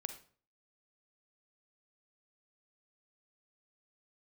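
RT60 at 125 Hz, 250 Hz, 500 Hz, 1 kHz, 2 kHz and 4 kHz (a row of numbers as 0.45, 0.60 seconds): 0.55, 0.50, 0.45, 0.45, 0.40, 0.35 seconds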